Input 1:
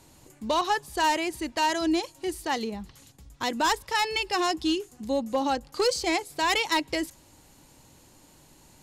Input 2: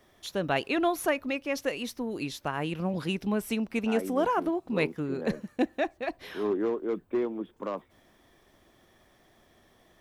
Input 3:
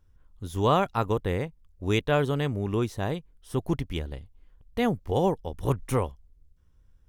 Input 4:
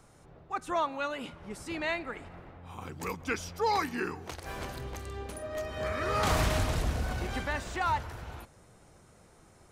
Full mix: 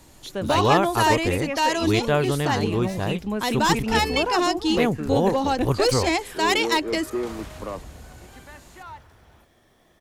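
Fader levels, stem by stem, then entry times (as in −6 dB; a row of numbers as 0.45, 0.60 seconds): +3.0, +1.0, +2.5, −11.5 decibels; 0.00, 0.00, 0.00, 1.00 seconds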